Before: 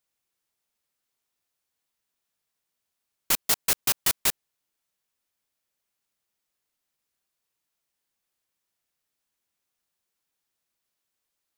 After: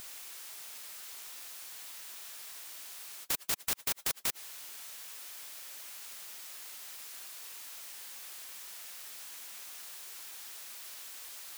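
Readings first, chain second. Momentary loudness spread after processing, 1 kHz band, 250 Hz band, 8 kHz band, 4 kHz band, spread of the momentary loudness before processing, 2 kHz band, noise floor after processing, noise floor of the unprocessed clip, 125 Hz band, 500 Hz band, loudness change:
11 LU, −8.0 dB, −9.0 dB, −6.5 dB, −6.5 dB, 4 LU, −6.5 dB, −51 dBFS, −83 dBFS, −9.0 dB, −8.5 dB, −16.0 dB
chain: high-pass filter 1,000 Hz 6 dB per octave
soft clipping −24 dBFS, distortion −9 dB
every bin compressed towards the loudest bin 10 to 1
level +1.5 dB

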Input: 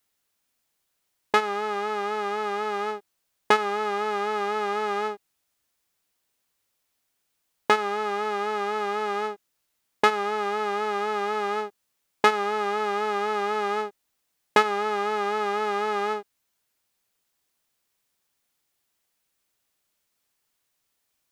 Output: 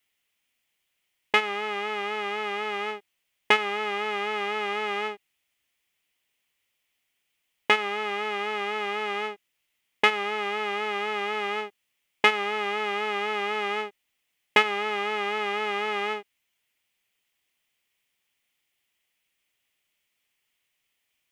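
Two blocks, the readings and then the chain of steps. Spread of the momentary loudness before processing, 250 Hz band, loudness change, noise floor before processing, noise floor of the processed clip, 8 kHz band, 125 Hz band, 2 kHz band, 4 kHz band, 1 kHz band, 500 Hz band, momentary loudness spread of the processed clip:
8 LU, −3.5 dB, −0.5 dB, −77 dBFS, −78 dBFS, −3.5 dB, can't be measured, +3.5 dB, +5.0 dB, −3.5 dB, −3.5 dB, 9 LU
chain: flat-topped bell 2,500 Hz +10.5 dB 1 octave
level −3.5 dB

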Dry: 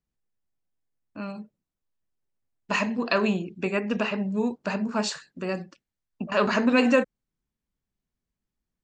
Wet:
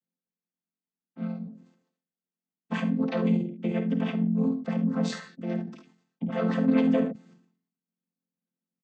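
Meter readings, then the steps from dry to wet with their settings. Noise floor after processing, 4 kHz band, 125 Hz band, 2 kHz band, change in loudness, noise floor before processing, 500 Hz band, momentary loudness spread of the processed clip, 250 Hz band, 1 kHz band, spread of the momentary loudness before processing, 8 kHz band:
below −85 dBFS, −10.0 dB, +5.5 dB, −11.5 dB, −2.0 dB, below −85 dBFS, −5.5 dB, 13 LU, +1.5 dB, −9.0 dB, 16 LU, below −10 dB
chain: channel vocoder with a chord as carrier major triad, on F3
dynamic equaliser 230 Hz, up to +4 dB, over −37 dBFS, Q 2.9
in parallel at −1 dB: brickwall limiter −18 dBFS, peak gain reduction 11 dB
on the sum: ambience of single reflections 52 ms −12 dB, 72 ms −14.5 dB
level that may fall only so fast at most 100 dB per second
level −6.5 dB

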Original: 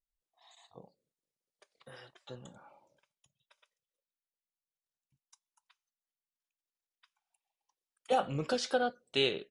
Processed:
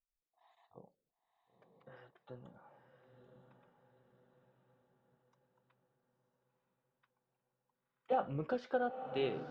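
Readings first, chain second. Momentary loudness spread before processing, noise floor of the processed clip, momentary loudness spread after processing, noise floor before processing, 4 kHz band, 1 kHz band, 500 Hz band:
20 LU, below −85 dBFS, 19 LU, below −85 dBFS, −17.0 dB, −4.0 dB, −4.0 dB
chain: low-pass filter 1,600 Hz 12 dB per octave
on a send: feedback delay with all-pass diffusion 974 ms, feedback 51%, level −8 dB
on the sum: level −4 dB

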